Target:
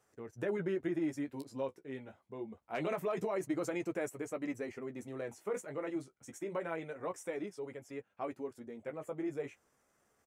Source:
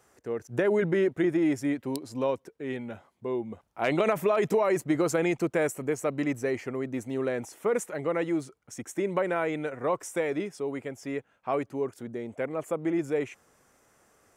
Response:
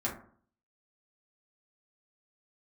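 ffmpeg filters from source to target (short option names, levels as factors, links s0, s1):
-af "atempo=1.4,flanger=delay=9.3:depth=5.8:regen=-26:speed=0.26:shape=sinusoidal,volume=0.447"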